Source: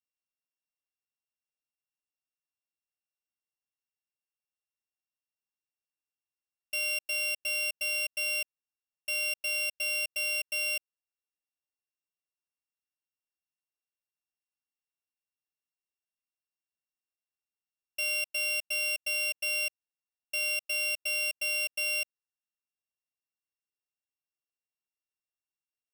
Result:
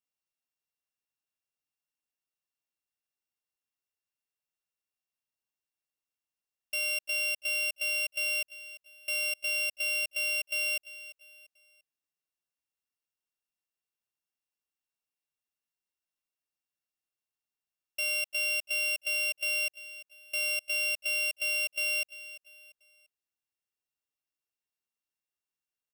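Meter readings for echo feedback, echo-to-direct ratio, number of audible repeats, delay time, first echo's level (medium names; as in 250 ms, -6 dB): 36%, -15.5 dB, 3, 344 ms, -16.0 dB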